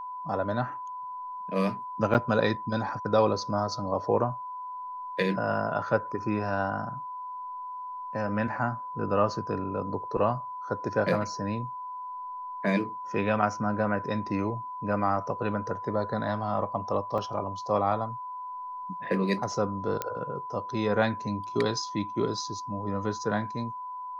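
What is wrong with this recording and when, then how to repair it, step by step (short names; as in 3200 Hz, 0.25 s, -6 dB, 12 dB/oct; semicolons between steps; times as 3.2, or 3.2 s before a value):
tone 1000 Hz -35 dBFS
2.14–2.15 gap 7.9 ms
17.18 gap 2.1 ms
20.02 pop -14 dBFS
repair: de-click; notch 1000 Hz, Q 30; interpolate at 2.14, 7.9 ms; interpolate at 17.18, 2.1 ms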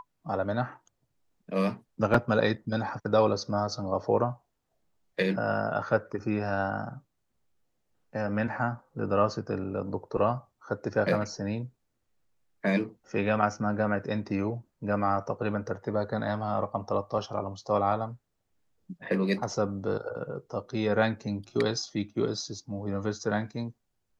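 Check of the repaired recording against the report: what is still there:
none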